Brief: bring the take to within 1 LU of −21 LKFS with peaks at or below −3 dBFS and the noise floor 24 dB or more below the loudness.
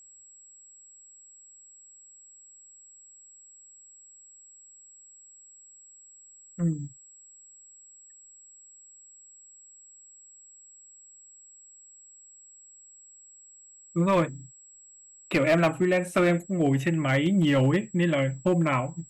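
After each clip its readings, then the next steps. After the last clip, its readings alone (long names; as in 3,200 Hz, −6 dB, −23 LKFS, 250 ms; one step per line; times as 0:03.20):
share of clipped samples 0.3%; peaks flattened at −16.0 dBFS; interfering tone 7,700 Hz; level of the tone −50 dBFS; integrated loudness −25.0 LKFS; sample peak −16.0 dBFS; target loudness −21.0 LKFS
→ clipped peaks rebuilt −16 dBFS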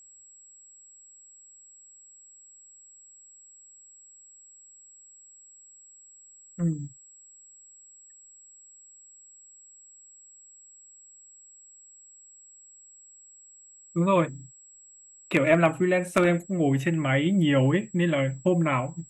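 share of clipped samples 0.0%; interfering tone 7,700 Hz; level of the tone −50 dBFS
→ notch filter 7,700 Hz, Q 30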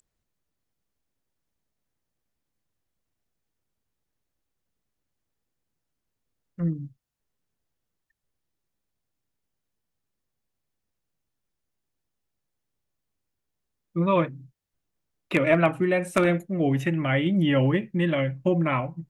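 interfering tone none found; integrated loudness −24.0 LKFS; sample peak −7.0 dBFS; target loudness −21.0 LKFS
→ level +3 dB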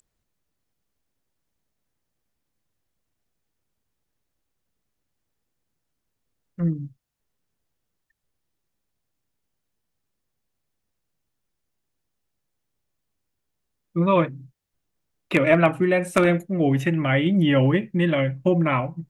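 integrated loudness −21.0 LKFS; sample peak −4.0 dBFS; background noise floor −79 dBFS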